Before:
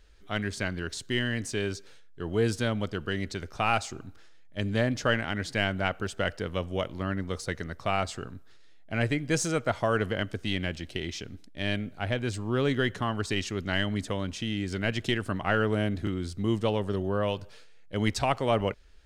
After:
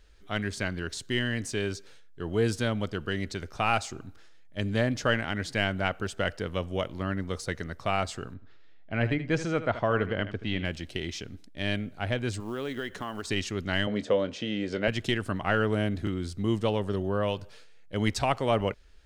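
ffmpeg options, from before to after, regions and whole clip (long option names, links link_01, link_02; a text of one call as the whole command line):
ffmpeg -i in.wav -filter_complex "[0:a]asettb=1/sr,asplit=3[link_01][link_02][link_03];[link_01]atrim=end=8.344[link_04];[link_02]atrim=start=8.34:end=10.65,asetpts=PTS-STARTPTS,afade=type=in:duration=0.004:curve=qsin,afade=type=out:start_time=2.306:duration=0.004:curve=qsin,lowpass=3200,aecho=1:1:78:0.237,atrim=end_sample=101871[link_05];[link_03]atrim=start=10.646[link_06];[link_04][link_05]acrossfade=duration=0.004:curve1=hsin:curve2=qsin[link_07];[link_07][link_06]acrossfade=duration=0.004:curve1=qsin:curve2=hsin,asettb=1/sr,asplit=3[link_08][link_09][link_10];[link_08]atrim=end=12.404[link_11];[link_09]atrim=start=12.4:end=13.27,asetpts=PTS-STARTPTS,afade=type=in:duration=0.004:curve=qsin,afade=type=out:start_time=0.866:duration=0.004:curve=qsin,equalizer=frequency=110:width=1.2:gain=-10.5,acompressor=threshold=-31dB:ratio=3:attack=3.2:release=140:knee=1:detection=peak,acrusher=bits=7:mode=log:mix=0:aa=0.000001[link_12];[link_10]atrim=start=13.266[link_13];[link_11][link_12]acrossfade=duration=0.004:curve1=hsin:curve2=qsin[link_14];[link_14][link_13]acrossfade=duration=0.004:curve1=qsin:curve2=hsin,asettb=1/sr,asplit=3[link_15][link_16][link_17];[link_15]atrim=end=13.874[link_18];[link_16]atrim=start=13.87:end=14.88,asetpts=PTS-STARTPTS,afade=type=in:duration=0.004:curve=qsin,afade=type=out:start_time=1.006:duration=0.004:curve=qsin,highpass=150,lowpass=5000,equalizer=frequency=520:width_type=o:width=0.51:gain=13,asplit=2[link_19][link_20];[link_20]adelay=24,volume=-12dB[link_21];[link_19][link_21]amix=inputs=2:normalize=0,atrim=end_sample=44541[link_22];[link_17]atrim=start=14.876[link_23];[link_18][link_22]acrossfade=duration=0.004:curve1=hsin:curve2=qsin[link_24];[link_24][link_23]acrossfade=duration=0.004:curve1=qsin:curve2=hsin" out.wav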